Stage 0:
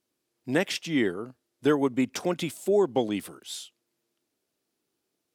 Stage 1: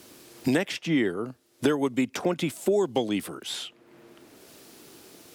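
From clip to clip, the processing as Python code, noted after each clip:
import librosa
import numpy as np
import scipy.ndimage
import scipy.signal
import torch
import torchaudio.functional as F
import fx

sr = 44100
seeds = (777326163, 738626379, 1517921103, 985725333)

y = fx.band_squash(x, sr, depth_pct=100)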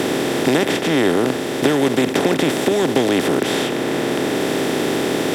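y = fx.bin_compress(x, sr, power=0.2)
y = y * librosa.db_to_amplitude(1.5)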